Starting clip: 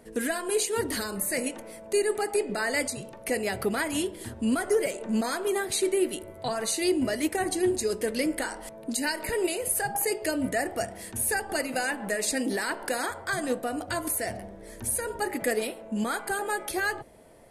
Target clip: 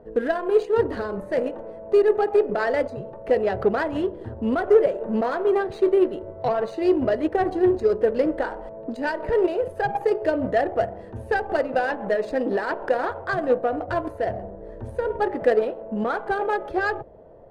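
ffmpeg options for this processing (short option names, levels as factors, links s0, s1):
-af "equalizer=f=2200:t=o:w=0.23:g=-11,adynamicsmooth=sensitivity=1:basefreq=990,equalizer=f=250:t=o:w=1:g=-7,equalizer=f=500:t=o:w=1:g=5,equalizer=f=8000:t=o:w=1:g=-5,volume=2.24"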